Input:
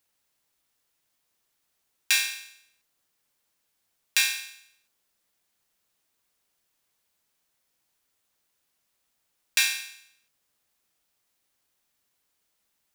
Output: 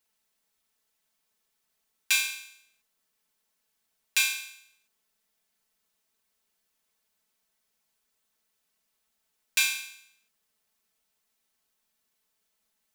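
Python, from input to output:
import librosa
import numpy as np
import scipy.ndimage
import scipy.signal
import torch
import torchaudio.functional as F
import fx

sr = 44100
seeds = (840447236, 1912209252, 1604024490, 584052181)

y = x + 0.92 * np.pad(x, (int(4.6 * sr / 1000.0), 0))[:len(x)]
y = F.gain(torch.from_numpy(y), -4.5).numpy()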